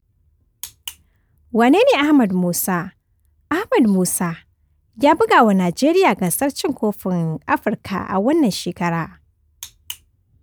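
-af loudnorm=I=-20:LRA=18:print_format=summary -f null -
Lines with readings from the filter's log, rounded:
Input Integrated:    -18.0 LUFS
Input True Peak:      -3.2 dBTP
Input LRA:             5.5 LU
Input Threshold:     -29.7 LUFS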